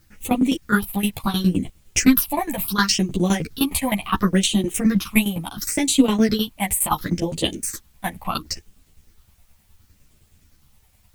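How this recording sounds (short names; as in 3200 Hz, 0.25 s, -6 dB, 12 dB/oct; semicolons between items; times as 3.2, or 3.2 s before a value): phasing stages 6, 0.71 Hz, lowest notch 350–1500 Hz; tremolo saw down 9.7 Hz, depth 90%; a quantiser's noise floor 12-bit, dither triangular; a shimmering, thickened sound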